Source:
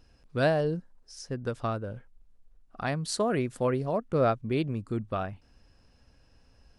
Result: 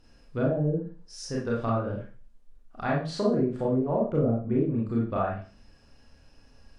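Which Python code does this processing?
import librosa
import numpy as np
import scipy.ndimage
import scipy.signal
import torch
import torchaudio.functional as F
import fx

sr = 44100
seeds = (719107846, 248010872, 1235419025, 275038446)

y = fx.env_lowpass_down(x, sr, base_hz=320.0, full_db=-22.0)
y = fx.rev_schroeder(y, sr, rt60_s=0.38, comb_ms=27, drr_db=-4.5)
y = y * 10.0 ** (-1.0 / 20.0)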